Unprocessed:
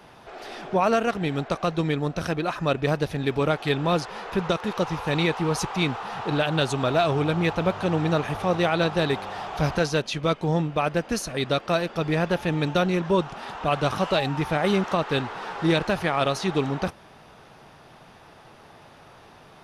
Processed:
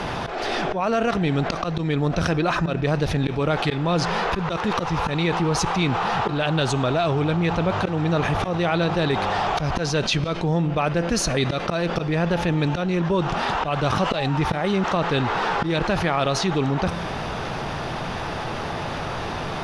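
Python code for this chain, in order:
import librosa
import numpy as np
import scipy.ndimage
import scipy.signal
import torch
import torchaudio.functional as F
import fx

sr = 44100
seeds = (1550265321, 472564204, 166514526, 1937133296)

y = scipy.signal.sosfilt(scipy.signal.butter(2, 7200.0, 'lowpass', fs=sr, output='sos'), x)
y = fx.low_shelf(y, sr, hz=91.0, db=7.5)
y = fx.auto_swell(y, sr, attack_ms=296.0)
y = fx.rider(y, sr, range_db=3, speed_s=0.5)
y = fx.comb_fb(y, sr, f0_hz=170.0, decay_s=0.86, harmonics='all', damping=0.0, mix_pct=40)
y = fx.env_flatten(y, sr, amount_pct=70)
y = F.gain(torch.from_numpy(y), 3.5).numpy()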